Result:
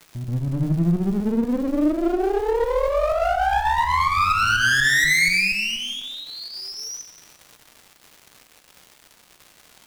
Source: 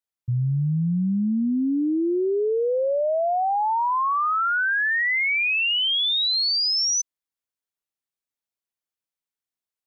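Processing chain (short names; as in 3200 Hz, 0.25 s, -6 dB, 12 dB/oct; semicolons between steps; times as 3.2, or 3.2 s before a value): resonant high shelf 2800 Hz -11.5 dB, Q 3; de-hum 64.74 Hz, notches 22; on a send: reverse echo 0.13 s -7 dB; on the sum: pump 125 bpm, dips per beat 2, -10 dB, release 0.1 s; one-sided clip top -36.5 dBFS, bottom -16.5 dBFS; crackle 310/s -39 dBFS; plate-style reverb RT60 1.1 s, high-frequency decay 0.95×, DRR 6.5 dB; gain +4.5 dB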